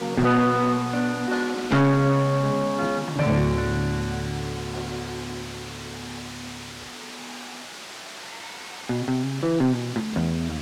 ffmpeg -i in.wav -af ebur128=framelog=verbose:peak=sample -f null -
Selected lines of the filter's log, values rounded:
Integrated loudness:
  I:         -24.4 LUFS
  Threshold: -35.5 LUFS
Loudness range:
  LRA:        13.2 LU
  Threshold: -46.5 LUFS
  LRA low:   -35.6 LUFS
  LRA high:  -22.4 LUFS
Sample peak:
  Peak:      -14.4 dBFS